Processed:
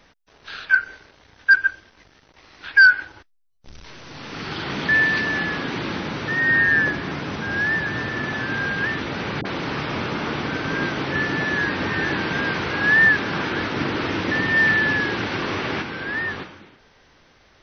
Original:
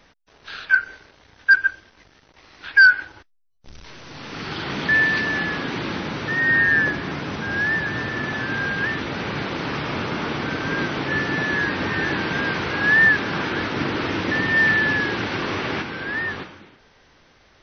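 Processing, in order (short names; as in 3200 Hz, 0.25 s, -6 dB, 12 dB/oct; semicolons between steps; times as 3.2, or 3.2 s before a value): 9.41–11.58 dispersion highs, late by 43 ms, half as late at 670 Hz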